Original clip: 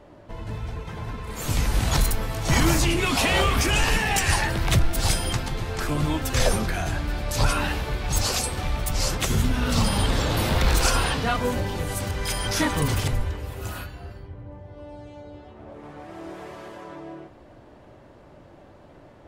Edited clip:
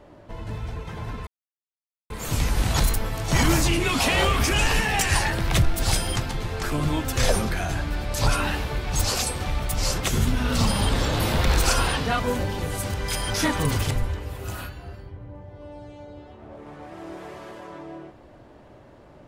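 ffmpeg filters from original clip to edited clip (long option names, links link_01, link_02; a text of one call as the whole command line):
ffmpeg -i in.wav -filter_complex "[0:a]asplit=2[link_01][link_02];[link_01]atrim=end=1.27,asetpts=PTS-STARTPTS,afade=type=out:start_time=1.266:duration=0.004:curve=hsin,apad=pad_dur=0.83[link_03];[link_02]atrim=start=1.27,asetpts=PTS-STARTPTS,afade=type=in:duration=0.004:curve=hsin[link_04];[link_03][link_04]concat=n=2:v=0:a=1" out.wav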